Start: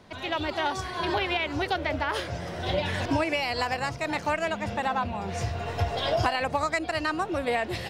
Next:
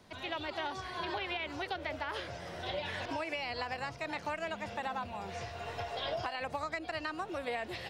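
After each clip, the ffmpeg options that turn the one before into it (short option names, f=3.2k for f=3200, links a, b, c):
-filter_complex "[0:a]acrossover=split=4800[a][b];[b]acompressor=threshold=-59dB:ratio=4:attack=1:release=60[c];[a][c]amix=inputs=2:normalize=0,highshelf=f=5.1k:g=8,acrossover=split=400|5400[d][e][f];[d]acompressor=threshold=-40dB:ratio=4[g];[e]acompressor=threshold=-27dB:ratio=4[h];[f]acompressor=threshold=-51dB:ratio=4[i];[g][h][i]amix=inputs=3:normalize=0,volume=-7dB"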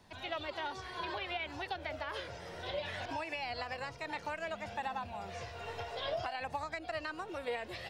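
-af "flanger=delay=1.1:depth=1.1:regen=53:speed=0.61:shape=sinusoidal,volume=2dB"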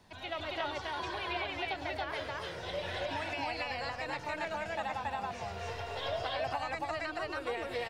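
-af "aecho=1:1:105|277:0.316|1"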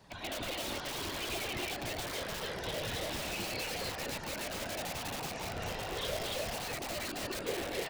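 -filter_complex "[0:a]afftfilt=real='hypot(re,im)*cos(2*PI*random(0))':imag='hypot(re,im)*sin(2*PI*random(1))':win_size=512:overlap=0.75,acrossover=split=580|2500[a][b][c];[b]aeval=exprs='(mod(178*val(0)+1,2)-1)/178':c=same[d];[a][d][c]amix=inputs=3:normalize=0,volume=8.5dB"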